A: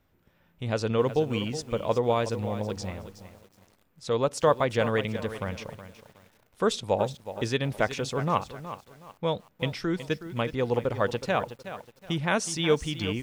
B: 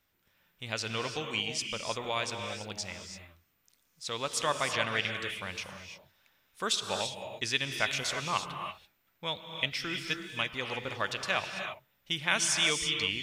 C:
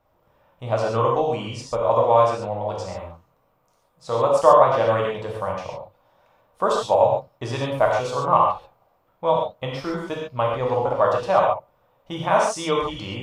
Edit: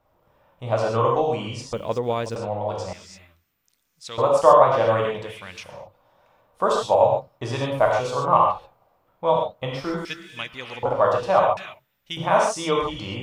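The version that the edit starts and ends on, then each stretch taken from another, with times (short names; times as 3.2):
C
1.73–2.36 from A
2.93–4.18 from B
5.28–5.76 from B, crossfade 0.24 s
10.05–10.83 from B
11.57–12.17 from B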